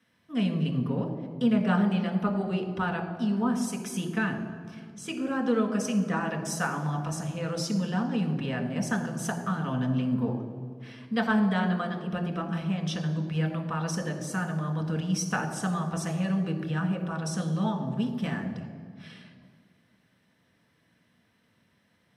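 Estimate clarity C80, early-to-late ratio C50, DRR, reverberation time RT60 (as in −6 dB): 9.5 dB, 8.5 dB, 3.5 dB, 1.9 s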